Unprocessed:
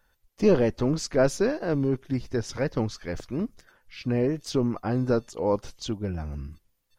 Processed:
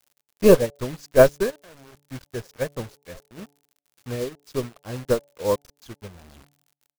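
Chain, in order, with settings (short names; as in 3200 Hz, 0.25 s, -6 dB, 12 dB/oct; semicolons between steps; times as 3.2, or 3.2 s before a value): reverb removal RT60 0.69 s; 1.5–2.06 level quantiser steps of 17 dB; on a send: delay with a stepping band-pass 0.482 s, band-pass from 2500 Hz, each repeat -0.7 oct, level -11 dB; on the sum: crackle 180/s -35 dBFS; in parallel at -6 dB: crossover distortion -47 dBFS; on the sum: comb 1.8 ms, depth 36%; bit-crush 5-bit; de-hum 143.5 Hz, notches 6; upward expander 2.5:1, over -28 dBFS; gain +5 dB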